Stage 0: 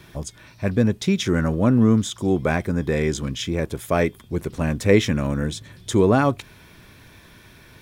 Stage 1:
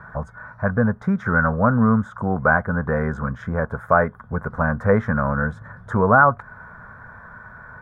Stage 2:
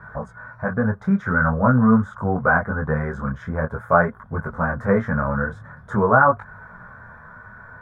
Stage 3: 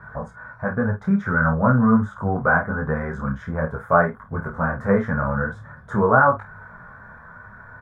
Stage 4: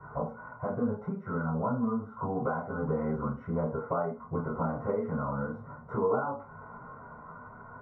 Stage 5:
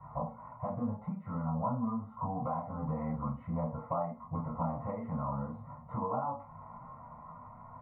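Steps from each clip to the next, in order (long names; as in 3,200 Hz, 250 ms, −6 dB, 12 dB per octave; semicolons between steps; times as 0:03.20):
drawn EQ curve 230 Hz 0 dB, 330 Hz −17 dB, 470 Hz +1 dB, 1,500 Hz +14 dB, 2,700 Hz −29 dB; in parallel at −2 dB: downward compressor, threshold −26 dBFS, peak gain reduction 17 dB; on the sum: level −2 dB
micro pitch shift up and down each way 16 cents; level +3 dB
ambience of single reflections 30 ms −10.5 dB, 49 ms −13.5 dB; level −1 dB
downward compressor 12 to 1, threshold −26 dBFS, peak gain reduction 16.5 dB; moving average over 26 samples; convolution reverb RT60 0.30 s, pre-delay 3 ms, DRR −5.5 dB; level −9 dB
phaser with its sweep stopped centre 1,500 Hz, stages 6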